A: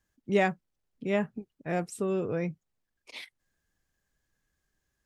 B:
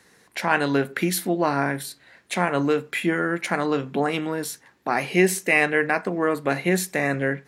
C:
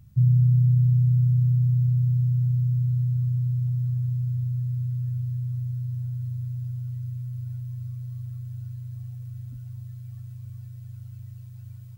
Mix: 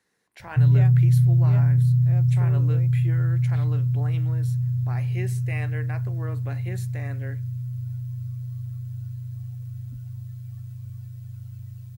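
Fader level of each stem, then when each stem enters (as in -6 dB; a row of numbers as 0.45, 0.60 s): -12.5, -17.0, +2.0 dB; 0.40, 0.00, 0.40 s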